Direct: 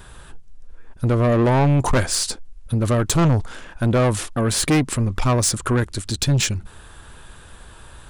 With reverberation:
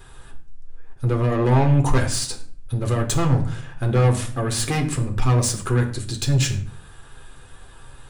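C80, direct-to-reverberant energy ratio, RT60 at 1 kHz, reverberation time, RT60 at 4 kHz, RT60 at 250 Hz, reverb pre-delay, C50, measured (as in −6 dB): 14.5 dB, 2.5 dB, 0.45 s, 0.50 s, 0.35 s, 0.75 s, 8 ms, 10.5 dB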